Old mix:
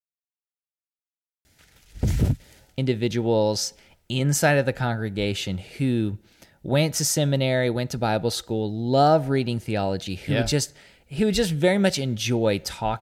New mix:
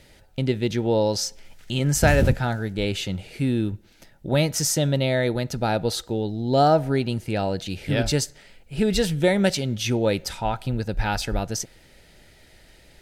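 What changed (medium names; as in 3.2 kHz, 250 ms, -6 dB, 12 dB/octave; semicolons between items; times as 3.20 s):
speech: entry -2.40 s; master: remove high-pass 44 Hz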